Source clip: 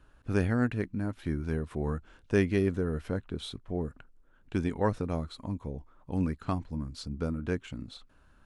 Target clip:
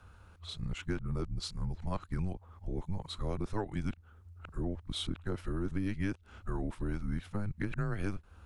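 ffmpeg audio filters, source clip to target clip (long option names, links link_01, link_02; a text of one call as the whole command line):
ffmpeg -i in.wav -af "areverse,afreqshift=-100,acompressor=threshold=-36dB:ratio=6,volume=4.5dB" out.wav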